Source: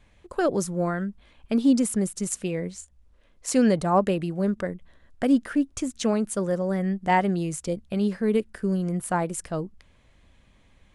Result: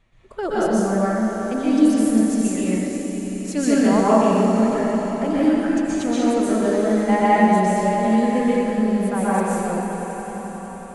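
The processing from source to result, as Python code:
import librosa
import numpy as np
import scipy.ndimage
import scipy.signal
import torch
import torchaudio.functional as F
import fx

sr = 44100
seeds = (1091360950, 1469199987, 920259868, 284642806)

y = fx.peak_eq(x, sr, hz=66.0, db=-12.5, octaves=0.22)
y = fx.hum_notches(y, sr, base_hz=60, count=4)
y = fx.echo_swell(y, sr, ms=90, loudest=5, wet_db=-14.5)
y = fx.pitch_keep_formants(y, sr, semitones=2.0)
y = fx.high_shelf(y, sr, hz=6300.0, db=-7.0)
y = fx.rev_plate(y, sr, seeds[0], rt60_s=1.7, hf_ratio=0.75, predelay_ms=110, drr_db=-8.5)
y = y * 10.0 ** (-3.0 / 20.0)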